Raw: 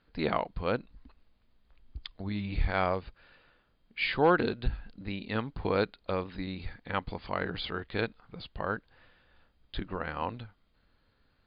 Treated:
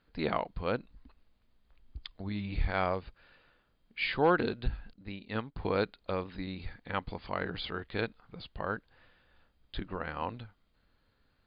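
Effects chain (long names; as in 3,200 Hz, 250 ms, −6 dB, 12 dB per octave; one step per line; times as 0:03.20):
0:04.93–0:05.56: expander for the loud parts 1.5 to 1, over −51 dBFS
level −2 dB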